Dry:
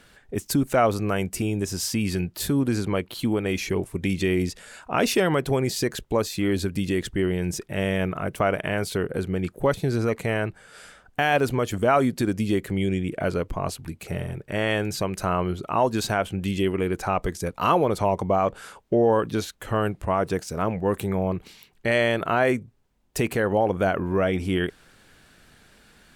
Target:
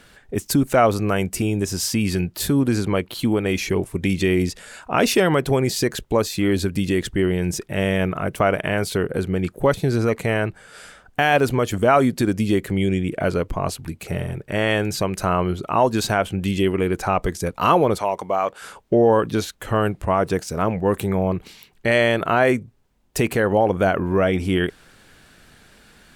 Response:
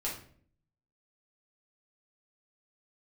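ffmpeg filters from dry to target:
-filter_complex "[0:a]asettb=1/sr,asplit=3[a][b][c];[a]atrim=end=17.984[d];[b]atrim=start=17.98:end=18.62,asetpts=PTS-STARTPTS,afade=t=in:d=0.004:c=qsin,afade=t=out:st=0.636:d=0.004:c=qsin,highpass=f=780:p=1[e];[c]atrim=start=18.616[f];[d][e]acrossfade=d=0.004:c1=hsin:c2=qsin[g];[g][f]acrossfade=d=0.004:c1=qsin:c2=hsin,volume=4dB"

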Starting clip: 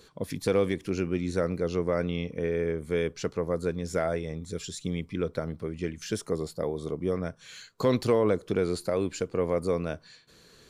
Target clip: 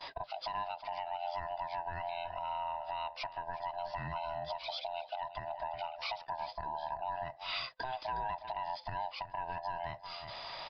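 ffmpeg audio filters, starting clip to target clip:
-filter_complex "[0:a]afftfilt=real='real(if(lt(b,1008),b+24*(1-2*mod(floor(b/24),2)),b),0)':imag='imag(if(lt(b,1008),b+24*(1-2*mod(floor(b/24),2)),b),0)':win_size=2048:overlap=0.75,aresample=11025,aresample=44100,acompressor=threshold=-42dB:ratio=4,lowshelf=f=130:g=-6,asplit=2[a][b];[b]adelay=361.5,volume=-13dB,highshelf=f=4k:g=-8.13[c];[a][c]amix=inputs=2:normalize=0,alimiter=level_in=16dB:limit=-24dB:level=0:latency=1:release=460,volume=-16dB,agate=range=-22dB:threshold=-59dB:ratio=16:detection=peak,equalizer=f=250:t=o:w=0.33:g=-4,equalizer=f=500:t=o:w=0.33:g=-6,equalizer=f=2.5k:t=o:w=0.33:g=4,volume=12.5dB"

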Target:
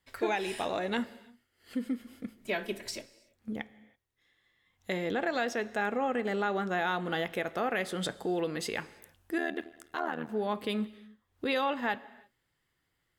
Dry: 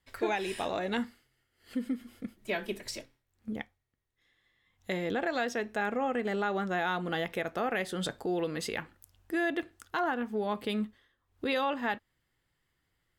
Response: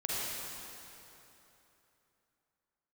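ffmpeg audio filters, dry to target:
-filter_complex "[0:a]lowshelf=f=82:g=-7,asplit=2[a][b];[1:a]atrim=start_sample=2205,afade=t=out:st=0.39:d=0.01,atrim=end_sample=17640[c];[b][c]afir=irnorm=-1:irlink=0,volume=-22dB[d];[a][d]amix=inputs=2:normalize=0,asettb=1/sr,asplit=3[e][f][g];[e]atrim=end=9.384[h];[f]atrim=start=9.38:end=10.29,asetpts=PTS-STARTPTS,afade=t=in:d=0.004:c=qsin,afade=t=out:st=0.906:d=0.004:c=qsin,tremolo=f=78:d=0.947[i];[g]atrim=start=10.286[j];[h][i]acrossfade=d=0.004:c1=hsin:c2=qsin[k];[k][j]acrossfade=d=0.004:c1=qsin:c2=hsin"

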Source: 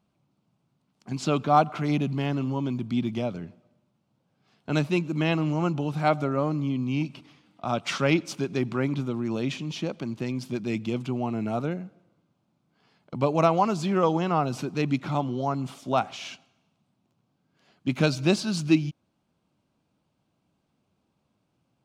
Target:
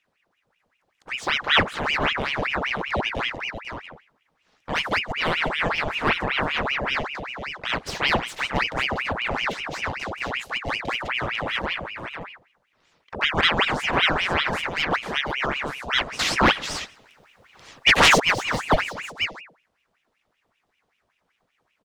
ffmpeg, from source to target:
-filter_complex "[0:a]acrossover=split=2500[a][b];[a]bandreject=f=50:t=h:w=6,bandreject=f=100:t=h:w=6,bandreject=f=150:t=h:w=6,bandreject=f=200:t=h:w=6[c];[b]asoftclip=type=tanh:threshold=-34dB[d];[c][d]amix=inputs=2:normalize=0,aecho=1:1:498:0.447,asettb=1/sr,asplit=3[e][f][g];[e]atrim=end=16.194[h];[f]atrim=start=16.19:end=18.2,asetpts=PTS-STARTPTS,afade=t=in:d=0.004:c=qsin,afade=t=out:st=2.006:d=0.004:c=qsin,aeval=exprs='0.299*sin(PI/2*3.98*val(0)/0.299)':c=same[i];[g]atrim=start=18.196[j];[h][i]acrossfade=d=0.004:c1=hsin:c2=qsin[k];[k][j]acrossfade=d=0.004:c1=qsin:c2=hsin,aeval=exprs='val(0)*sin(2*PI*1500*n/s+1500*0.8/5.2*sin(2*PI*5.2*n/s))':c=same,volume=3.5dB"

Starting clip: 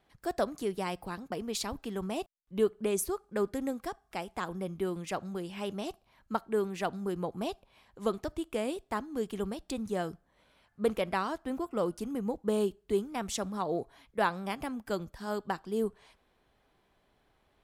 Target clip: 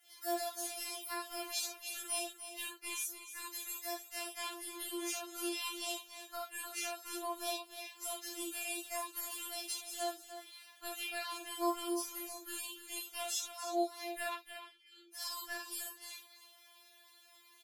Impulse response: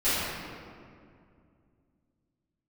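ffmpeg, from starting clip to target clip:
-filter_complex "[0:a]aderivative,acompressor=threshold=-57dB:ratio=6,asplit=3[a][b][c];[a]afade=t=out:st=14.32:d=0.02[d];[b]asplit=3[e][f][g];[e]bandpass=f=270:t=q:w=8,volume=0dB[h];[f]bandpass=f=2.29k:t=q:w=8,volume=-6dB[i];[g]bandpass=f=3.01k:t=q:w=8,volume=-9dB[j];[h][i][j]amix=inputs=3:normalize=0,afade=t=in:st=14.32:d=0.02,afade=t=out:st=15.13:d=0.02[k];[c]afade=t=in:st=15.13:d=0.02[l];[d][k][l]amix=inputs=3:normalize=0,aecho=1:1:299:0.282[m];[1:a]atrim=start_sample=2205,atrim=end_sample=4410[n];[m][n]afir=irnorm=-1:irlink=0,afftfilt=real='re*4*eq(mod(b,16),0)':imag='im*4*eq(mod(b,16),0)':win_size=2048:overlap=0.75,volume=12.5dB"

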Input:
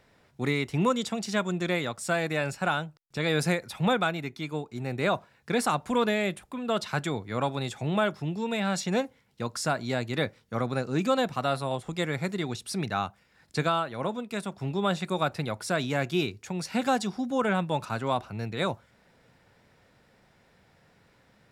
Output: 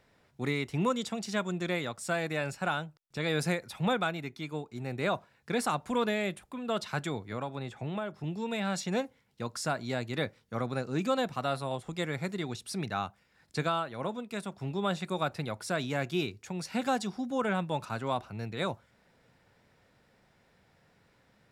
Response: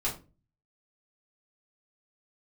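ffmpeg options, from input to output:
-filter_complex "[0:a]asettb=1/sr,asplit=3[a][b][c];[a]atrim=end=7.324[d];[b]atrim=start=7.32:end=8.24,asetpts=PTS-STARTPTS,afade=t=in:d=0.004:c=qsin,afade=t=out:st=0.916:d=0.004:c=qsin,acrossover=split=1100|2700[e][f][g];[e]acompressor=threshold=-29dB:ratio=4[h];[f]acompressor=threshold=-42dB:ratio=4[i];[g]acompressor=threshold=-54dB:ratio=4[j];[h][i][j]amix=inputs=3:normalize=0[k];[c]atrim=start=8.236[l];[d][k]acrossfade=d=0.004:c1=hsin:c2=qsin[m];[m][l]acrossfade=d=0.004:c1=qsin:c2=hsin,volume=-4dB"

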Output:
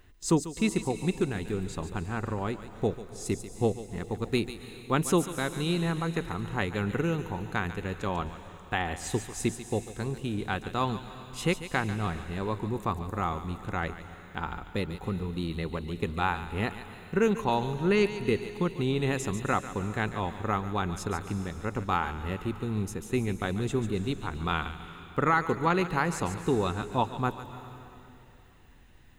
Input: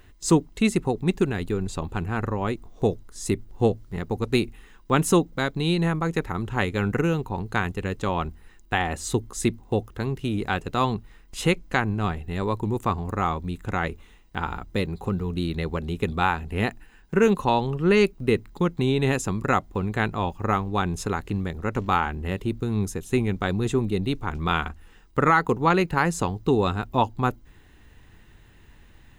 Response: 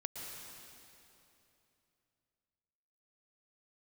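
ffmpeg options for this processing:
-filter_complex "[0:a]asplit=2[a][b];[1:a]atrim=start_sample=2205,highshelf=f=3.2k:g=11,adelay=143[c];[b][c]afir=irnorm=-1:irlink=0,volume=-12dB[d];[a][d]amix=inputs=2:normalize=0,volume=-5.5dB"

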